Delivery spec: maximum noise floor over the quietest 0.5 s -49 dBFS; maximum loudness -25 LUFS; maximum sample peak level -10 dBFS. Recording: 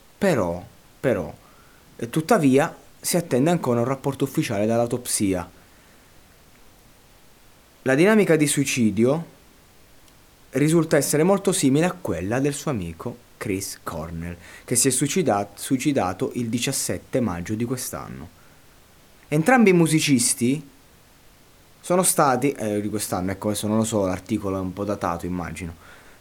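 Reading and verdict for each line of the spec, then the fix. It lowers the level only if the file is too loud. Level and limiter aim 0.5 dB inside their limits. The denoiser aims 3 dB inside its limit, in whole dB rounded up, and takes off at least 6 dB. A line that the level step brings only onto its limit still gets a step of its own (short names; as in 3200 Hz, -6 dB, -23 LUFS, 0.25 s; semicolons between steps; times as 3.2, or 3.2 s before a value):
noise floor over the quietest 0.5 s -52 dBFS: OK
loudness -22.0 LUFS: fail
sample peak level -4.0 dBFS: fail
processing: gain -3.5 dB; limiter -10.5 dBFS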